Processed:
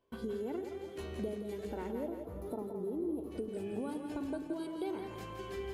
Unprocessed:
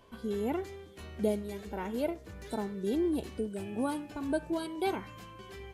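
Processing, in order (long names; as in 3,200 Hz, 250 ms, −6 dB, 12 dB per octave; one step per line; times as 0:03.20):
parametric band 390 Hz +7 dB 1.2 octaves
downward compressor, threshold −37 dBFS, peak gain reduction 16.5 dB
noise gate with hold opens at −42 dBFS
gain on a spectral selection 0:01.91–0:03.31, 1,400–9,900 Hz −17 dB
echo with a time of its own for lows and highs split 450 Hz, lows 91 ms, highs 169 ms, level −6 dB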